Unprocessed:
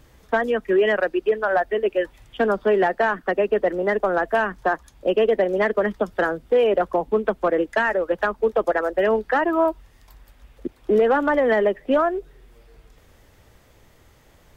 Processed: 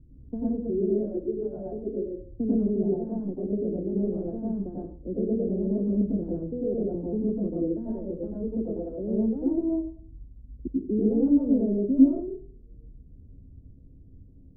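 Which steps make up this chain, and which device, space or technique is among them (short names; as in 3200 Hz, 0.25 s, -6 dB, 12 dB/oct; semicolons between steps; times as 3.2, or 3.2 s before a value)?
next room (LPF 280 Hz 24 dB/oct; reverb RT60 0.45 s, pre-delay 87 ms, DRR -6 dB)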